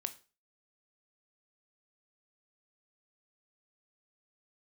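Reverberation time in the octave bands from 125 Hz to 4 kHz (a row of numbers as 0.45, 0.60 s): 0.35, 0.35, 0.35, 0.35, 0.30, 0.30 s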